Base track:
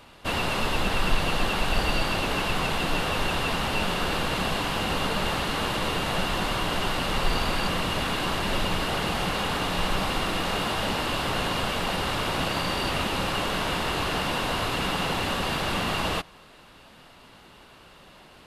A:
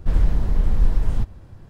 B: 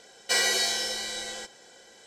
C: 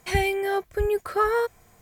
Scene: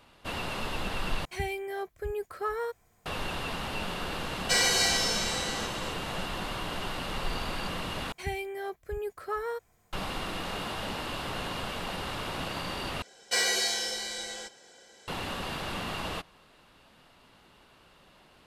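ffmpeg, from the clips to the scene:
ffmpeg -i bed.wav -i cue0.wav -i cue1.wav -i cue2.wav -filter_complex "[3:a]asplit=2[link_01][link_02];[2:a]asplit=2[link_03][link_04];[0:a]volume=-8dB[link_05];[link_03]aecho=1:1:102|274.1:0.355|0.447[link_06];[link_05]asplit=4[link_07][link_08][link_09][link_10];[link_07]atrim=end=1.254[link_11];[link_01]atrim=end=1.81,asetpts=PTS-STARTPTS,volume=-10dB[link_12];[link_08]atrim=start=3.056:end=8.124[link_13];[link_02]atrim=end=1.81,asetpts=PTS-STARTPTS,volume=-11dB[link_14];[link_09]atrim=start=9.926:end=13.024[link_15];[link_04]atrim=end=2.06,asetpts=PTS-STARTPTS,volume=-2.5dB[link_16];[link_10]atrim=start=15.076[link_17];[link_06]atrim=end=2.06,asetpts=PTS-STARTPTS,volume=-1dB,afade=type=in:duration=0.004:curve=hsin,afade=type=out:start_time=2.056:duration=0.004:curve=hsin,adelay=4200[link_18];[link_11][link_12]acrossfade=duration=0.004:curve1=hsin:curve2=hsin[link_19];[link_19][link_13]acrossfade=duration=0.004:curve1=hsin:curve2=hsin[link_20];[link_20][link_14]acrossfade=duration=0.004:curve1=hsin:curve2=hsin[link_21];[link_21][link_15]acrossfade=duration=0.004:curve1=hsin:curve2=hsin[link_22];[link_22][link_16]acrossfade=duration=0.004:curve1=hsin:curve2=hsin[link_23];[link_23][link_17]acrossfade=duration=0.004:curve1=hsin:curve2=hsin[link_24];[link_24][link_18]amix=inputs=2:normalize=0" out.wav

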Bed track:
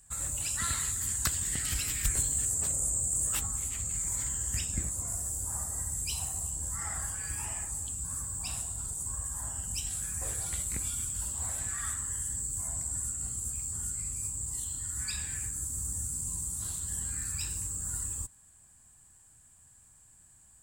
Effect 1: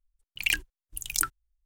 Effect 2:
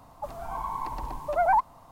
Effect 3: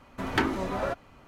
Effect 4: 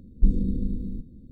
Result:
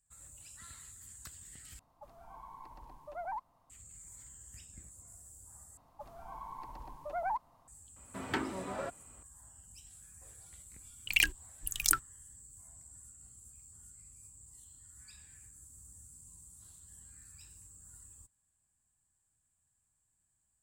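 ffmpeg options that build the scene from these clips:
ffmpeg -i bed.wav -i cue0.wav -i cue1.wav -i cue2.wav -filter_complex "[2:a]asplit=2[link_01][link_02];[0:a]volume=-20dB[link_03];[3:a]highpass=88[link_04];[link_03]asplit=3[link_05][link_06][link_07];[link_05]atrim=end=1.794[link_08];[link_01]atrim=end=1.91,asetpts=PTS-STARTPTS,volume=-18dB[link_09];[link_06]atrim=start=3.696:end=5.774[link_10];[link_02]atrim=end=1.91,asetpts=PTS-STARTPTS,volume=-13dB[link_11];[link_07]atrim=start=7.676[link_12];[link_04]atrim=end=1.27,asetpts=PTS-STARTPTS,volume=-9dB,afade=type=in:duration=0.004:curve=hsin,afade=type=out:start_time=1.266:duration=0.004:curve=hsin,adelay=7960[link_13];[1:a]atrim=end=1.65,asetpts=PTS-STARTPTS,volume=-1dB,afade=type=in:duration=0.004:curve=hsin,afade=type=out:start_time=1.646:duration=0.004:curve=hsin,adelay=10700[link_14];[link_08][link_09]acrossfade=duration=0.004:curve1=hsin:curve2=hsin[link_15];[link_15][link_10]acrossfade=duration=0.004:curve1=hsin:curve2=hsin[link_16];[link_16][link_11]acrossfade=duration=0.004:curve1=hsin:curve2=hsin[link_17];[link_17][link_12]acrossfade=duration=0.004:curve1=hsin:curve2=hsin[link_18];[link_18][link_13][link_14]amix=inputs=3:normalize=0" out.wav

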